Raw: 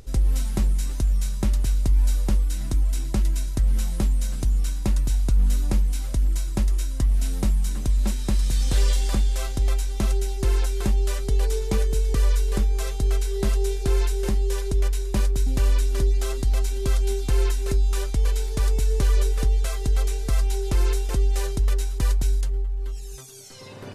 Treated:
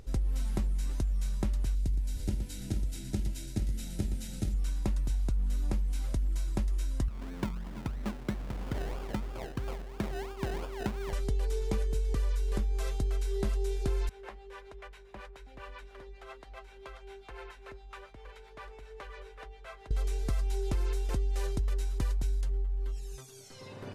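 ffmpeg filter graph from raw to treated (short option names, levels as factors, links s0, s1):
-filter_complex "[0:a]asettb=1/sr,asplit=3[s0][s1][s2];[s0]atrim=end=1.754[s3];[s1]atrim=start=1.75:end=4.54,asetpts=PTS-STARTPTS,afade=t=in:d=0.004:c=qsin,afade=t=out:st=2.786:d=0.004:c=qsin,asuperstop=centerf=1100:order=20:qfactor=5.3,equalizer=f=980:t=o:w=2:g=-9.5,aecho=1:1:81|117|419|450|478:0.141|0.376|0.631|0.398|0.266,atrim=end_sample=123039[s4];[s2]atrim=start=4.536[s5];[s3][s4]acrossfade=d=0.004:c1=hsin:c2=qsin[s6];[s6][s5]acrossfade=d=0.004:c1=qsin:c2=hsin,asettb=1/sr,asplit=3[s7][s8][s9];[s7]atrim=end=7.084[s10];[s8]atrim=start=7.08:end=11.13,asetpts=PTS-STARTPTS,afade=t=in:d=0.004:c=qsin,afade=t=out:st=4.046:d=0.004:c=qsin,highpass=100,lowpass=3700,acrusher=samples=31:mix=1:aa=0.000001:lfo=1:lforange=18.6:lforate=3[s11];[s9]atrim=start=11.126[s12];[s10][s11]acrossfade=d=0.004:c1=hsin:c2=qsin[s13];[s13][s12]acrossfade=d=0.004:c1=qsin:c2=hsin,asettb=1/sr,asplit=3[s14][s15][s16];[s14]atrim=end=14.094[s17];[s15]atrim=start=14.09:end=19.91,asetpts=PTS-STARTPTS,afade=t=in:d=0.004:c=qsin,afade=t=out:st=5.816:d=0.004:c=qsin,acrossover=split=520 3000:gain=0.0708 1 0.1[s18][s19][s20];[s18][s19][s20]amix=inputs=3:normalize=0,acrossover=split=410[s21][s22];[s21]aeval=exprs='val(0)*(1-0.7/2+0.7/2*cos(2*PI*7.4*n/s))':c=same[s23];[s22]aeval=exprs='val(0)*(1-0.7/2-0.7/2*cos(2*PI*7.4*n/s))':c=same[s24];[s23][s24]amix=inputs=2:normalize=0,aeval=exprs='val(0)+0.000631*(sin(2*PI*50*n/s)+sin(2*PI*2*50*n/s)/2+sin(2*PI*3*50*n/s)/3+sin(2*PI*4*50*n/s)/4+sin(2*PI*5*50*n/s)/5)':c=same[s25];[s16]atrim=start=19.906[s26];[s17][s25]acrossfade=d=0.004:c1=hsin:c2=qsin[s27];[s27][s26]acrossfade=d=0.004:c1=qsin:c2=hsin,highshelf=f=4600:g=-7,acompressor=threshold=0.0794:ratio=6,volume=0.596"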